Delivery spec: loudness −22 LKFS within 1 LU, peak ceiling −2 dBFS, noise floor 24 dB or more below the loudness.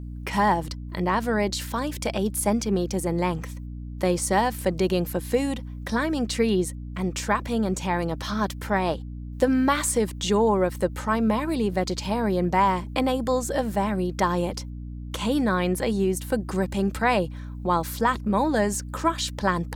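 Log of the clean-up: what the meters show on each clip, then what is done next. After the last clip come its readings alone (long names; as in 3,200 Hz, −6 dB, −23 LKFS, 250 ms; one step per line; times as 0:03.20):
mains hum 60 Hz; hum harmonics up to 300 Hz; level of the hum −33 dBFS; integrated loudness −25.0 LKFS; sample peak −7.0 dBFS; target loudness −22.0 LKFS
→ hum removal 60 Hz, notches 5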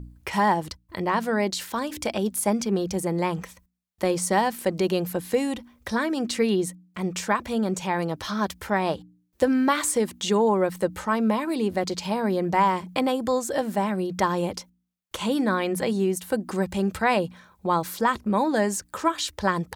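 mains hum none found; integrated loudness −25.5 LKFS; sample peak −7.5 dBFS; target loudness −22.0 LKFS
→ level +3.5 dB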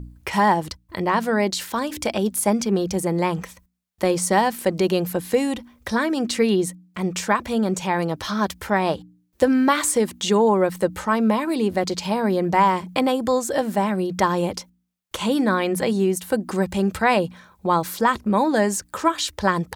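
integrated loudness −22.0 LKFS; sample peak −4.0 dBFS; background noise floor −63 dBFS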